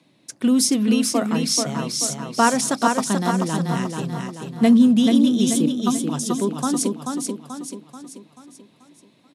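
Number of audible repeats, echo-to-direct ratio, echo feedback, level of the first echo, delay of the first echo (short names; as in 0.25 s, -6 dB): 5, -3.5 dB, 48%, -4.5 dB, 0.435 s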